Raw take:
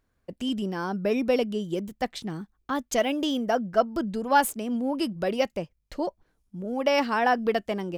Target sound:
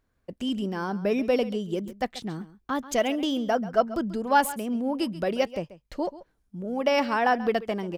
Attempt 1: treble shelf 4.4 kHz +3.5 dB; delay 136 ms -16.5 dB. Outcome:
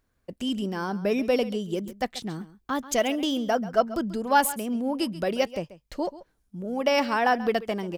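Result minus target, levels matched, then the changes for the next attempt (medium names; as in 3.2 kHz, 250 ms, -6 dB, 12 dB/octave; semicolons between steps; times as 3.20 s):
8 kHz band +4.5 dB
change: treble shelf 4.4 kHz -2.5 dB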